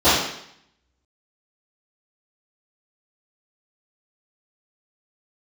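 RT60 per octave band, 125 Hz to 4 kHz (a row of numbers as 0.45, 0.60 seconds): 0.80, 0.70, 0.70, 0.70, 0.75, 0.70 seconds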